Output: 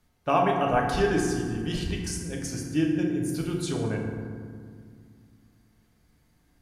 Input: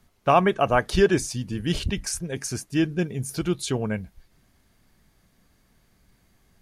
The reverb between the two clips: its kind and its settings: FDN reverb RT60 2 s, low-frequency decay 1.5×, high-frequency decay 0.45×, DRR -1 dB; trim -7 dB

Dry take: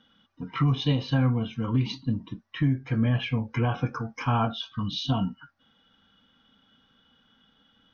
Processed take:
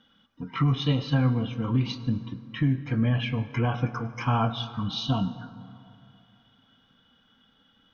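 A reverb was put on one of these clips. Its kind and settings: plate-style reverb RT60 2.8 s, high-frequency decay 0.45×, pre-delay 85 ms, DRR 14 dB

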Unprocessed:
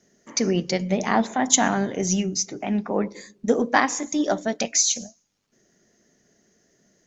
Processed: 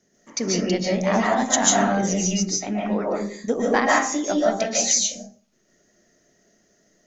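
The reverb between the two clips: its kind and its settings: algorithmic reverb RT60 0.41 s, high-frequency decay 0.55×, pre-delay 105 ms, DRR -4.5 dB; trim -3.5 dB

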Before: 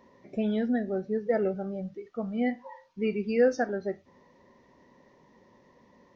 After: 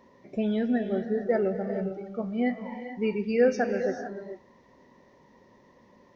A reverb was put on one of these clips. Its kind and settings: gated-style reverb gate 470 ms rising, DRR 7.5 dB; trim +1 dB

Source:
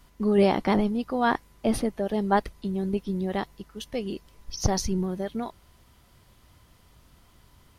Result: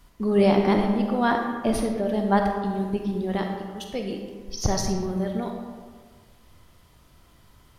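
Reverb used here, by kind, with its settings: algorithmic reverb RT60 1.6 s, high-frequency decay 0.55×, pre-delay 5 ms, DRR 2.5 dB

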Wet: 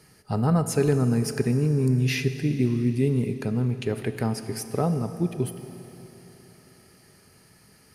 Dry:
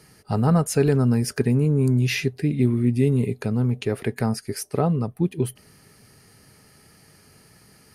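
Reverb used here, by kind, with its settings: Schroeder reverb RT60 3.7 s, combs from 27 ms, DRR 9.5 dB; trim -3 dB

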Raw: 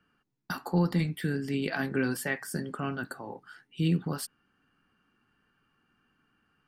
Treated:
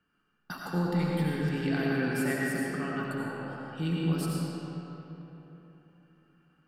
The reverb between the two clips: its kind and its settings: algorithmic reverb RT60 3.6 s, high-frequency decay 0.6×, pre-delay 50 ms, DRR -4.5 dB; trim -5 dB

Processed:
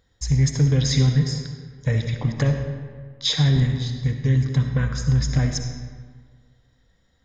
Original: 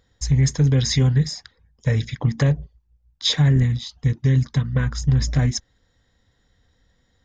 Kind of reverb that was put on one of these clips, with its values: algorithmic reverb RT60 1.7 s, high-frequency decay 0.65×, pre-delay 25 ms, DRR 5 dB; trim -2 dB

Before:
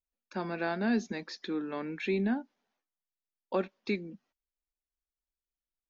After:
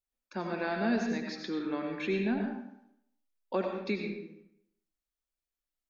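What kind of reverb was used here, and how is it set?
algorithmic reverb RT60 0.76 s, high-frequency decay 0.75×, pre-delay 55 ms, DRR 2 dB; trim -1 dB

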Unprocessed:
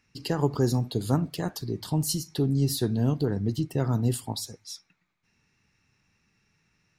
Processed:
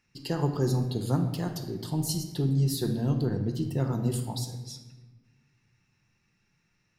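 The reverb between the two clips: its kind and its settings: simulated room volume 870 m³, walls mixed, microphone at 0.87 m; trim -4 dB

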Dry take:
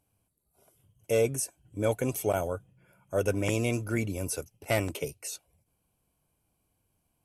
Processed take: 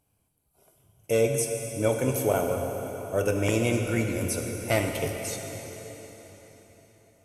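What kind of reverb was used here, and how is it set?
plate-style reverb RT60 4.4 s, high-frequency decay 0.85×, DRR 2.5 dB; trim +2 dB

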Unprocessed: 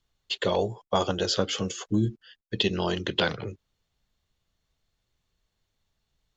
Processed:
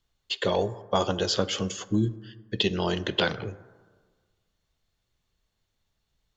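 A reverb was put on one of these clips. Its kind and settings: plate-style reverb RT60 1.5 s, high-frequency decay 0.35×, DRR 15 dB

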